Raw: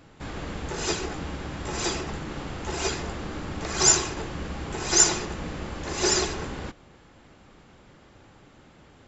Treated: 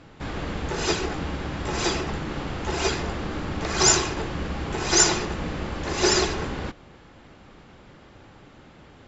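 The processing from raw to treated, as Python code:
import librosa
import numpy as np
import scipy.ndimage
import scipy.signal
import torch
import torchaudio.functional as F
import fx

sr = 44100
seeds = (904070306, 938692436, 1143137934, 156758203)

y = scipy.signal.sosfilt(scipy.signal.butter(2, 5800.0, 'lowpass', fs=sr, output='sos'), x)
y = y * 10.0 ** (4.0 / 20.0)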